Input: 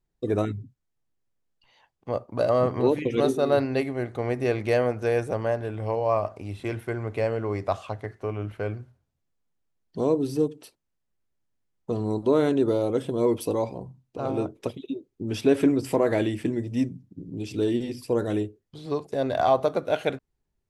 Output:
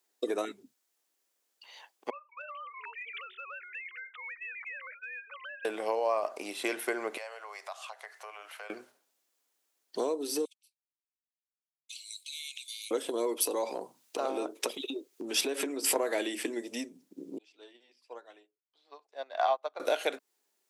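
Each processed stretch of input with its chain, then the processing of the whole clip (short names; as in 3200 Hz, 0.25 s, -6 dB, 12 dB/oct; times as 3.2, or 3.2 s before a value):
2.1–5.65 sine-wave speech + HPF 1400 Hz 24 dB/oct + compressor 10:1, threshold -47 dBFS
7.17–8.7 HPF 670 Hz 24 dB/oct + compressor 2.5:1, threshold -53 dBFS
10.45–12.91 gate -39 dBFS, range -31 dB + brick-wall FIR high-pass 2100 Hz + compressor, threshold -49 dBFS
13.47–15.96 compressor 2.5:1, threshold -32 dBFS + mismatched tape noise reduction encoder only
17.38–19.8 BPF 260–3800 Hz + resonant low shelf 550 Hz -7 dB, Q 1.5 + upward expander 2.5:1, over -35 dBFS
whole clip: compressor 10:1, threshold -30 dBFS; Bessel high-pass 470 Hz, order 6; high shelf 3700 Hz +10 dB; gain +6.5 dB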